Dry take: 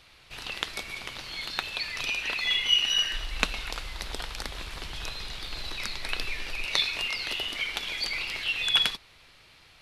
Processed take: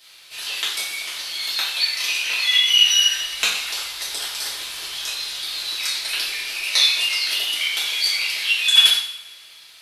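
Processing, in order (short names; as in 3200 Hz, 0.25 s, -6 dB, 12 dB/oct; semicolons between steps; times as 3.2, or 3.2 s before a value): tilt +4.5 dB/oct; two-slope reverb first 0.56 s, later 1.7 s, from -19 dB, DRR -8.5 dB; gain -7 dB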